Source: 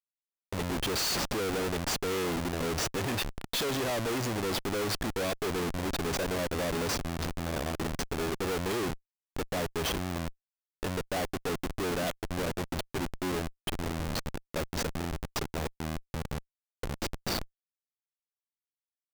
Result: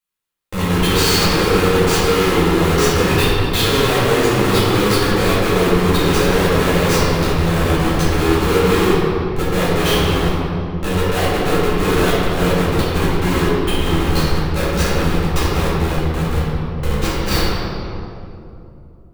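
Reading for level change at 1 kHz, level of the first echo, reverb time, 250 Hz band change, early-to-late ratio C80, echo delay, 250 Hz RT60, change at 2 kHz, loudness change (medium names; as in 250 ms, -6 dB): +16.5 dB, no echo, 2.8 s, +17.0 dB, -1.5 dB, no echo, 3.7 s, +16.0 dB, +16.5 dB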